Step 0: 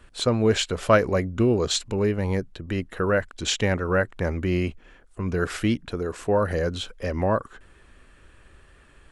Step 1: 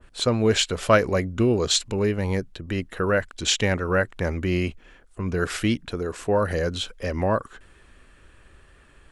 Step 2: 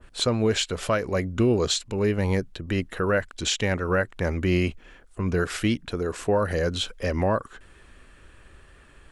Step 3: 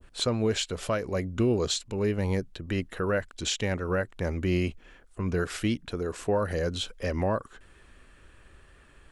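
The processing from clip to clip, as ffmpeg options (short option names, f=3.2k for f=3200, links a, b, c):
-af "adynamicequalizer=threshold=0.0158:dfrequency=1900:dqfactor=0.7:tfrequency=1900:tqfactor=0.7:attack=5:release=100:ratio=0.375:range=2:mode=boostabove:tftype=highshelf"
-af "alimiter=limit=-14.5dB:level=0:latency=1:release=465,volume=1.5dB"
-af "adynamicequalizer=threshold=0.0112:dfrequency=1600:dqfactor=0.78:tfrequency=1600:tqfactor=0.78:attack=5:release=100:ratio=0.375:range=2:mode=cutabove:tftype=bell,volume=-3.5dB"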